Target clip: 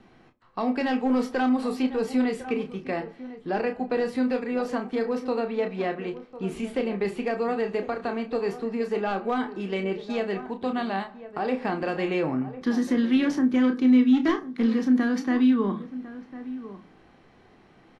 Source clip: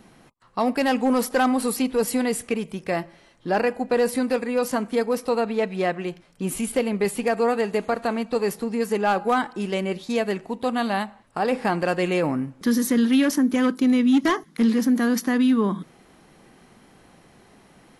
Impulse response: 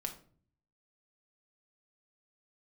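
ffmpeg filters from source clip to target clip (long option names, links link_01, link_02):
-filter_complex "[0:a]lowpass=3800,asplit=2[link_01][link_02];[link_02]adelay=31,volume=-8dB[link_03];[link_01][link_03]amix=inputs=2:normalize=0,asplit=2[link_04][link_05];[link_05]adelay=1050,volume=-15dB,highshelf=frequency=4000:gain=-23.6[link_06];[link_04][link_06]amix=inputs=2:normalize=0,asplit=2[link_07][link_08];[1:a]atrim=start_sample=2205,asetrate=79380,aresample=44100[link_09];[link_08][link_09]afir=irnorm=-1:irlink=0,volume=3.5dB[link_10];[link_07][link_10]amix=inputs=2:normalize=0,acrossover=split=400|3000[link_11][link_12][link_13];[link_12]acompressor=threshold=-21dB:ratio=2[link_14];[link_11][link_14][link_13]amix=inputs=3:normalize=0,volume=-8dB"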